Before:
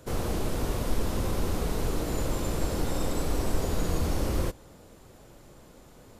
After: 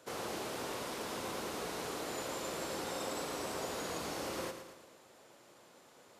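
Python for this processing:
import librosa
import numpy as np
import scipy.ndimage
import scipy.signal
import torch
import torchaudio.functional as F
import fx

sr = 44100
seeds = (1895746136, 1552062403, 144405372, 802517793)

p1 = fx.weighting(x, sr, curve='A')
p2 = p1 + fx.echo_feedback(p1, sr, ms=112, feedback_pct=52, wet_db=-9.0, dry=0)
y = p2 * librosa.db_to_amplitude(-4.0)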